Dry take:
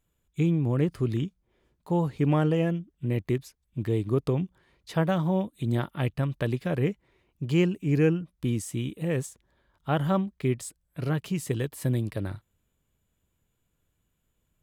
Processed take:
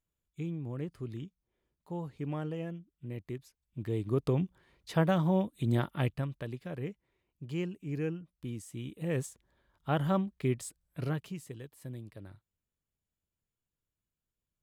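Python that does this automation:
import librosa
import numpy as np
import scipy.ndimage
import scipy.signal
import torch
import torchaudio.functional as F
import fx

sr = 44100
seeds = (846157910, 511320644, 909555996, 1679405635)

y = fx.gain(x, sr, db=fx.line((3.33, -13.0), (4.4, -2.0), (6.0, -2.0), (6.46, -12.0), (8.69, -12.0), (9.16, -4.0), (11.04, -4.0), (11.54, -16.5)))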